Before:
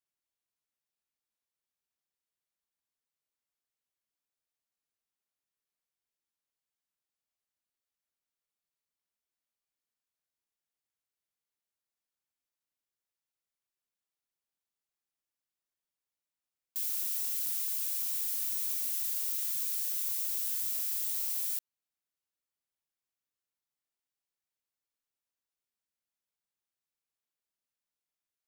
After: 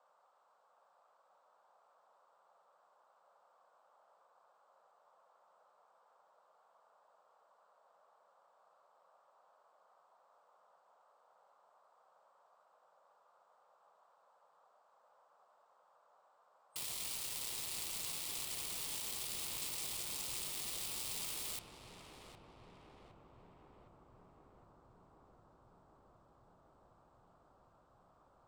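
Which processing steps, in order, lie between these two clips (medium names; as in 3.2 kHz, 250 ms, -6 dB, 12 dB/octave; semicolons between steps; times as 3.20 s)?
FFT band-pass 150–8500 Hz; Chebyshev shaper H 7 -9 dB, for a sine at -32.5 dBFS; fifteen-band graphic EQ 250 Hz -5 dB, 630 Hz -5 dB, 1.6 kHz -11 dB, 6.3 kHz -8 dB; band noise 520–1300 Hz -79 dBFS; filtered feedback delay 762 ms, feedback 84%, low-pass 1.3 kHz, level -3.5 dB; trim +7 dB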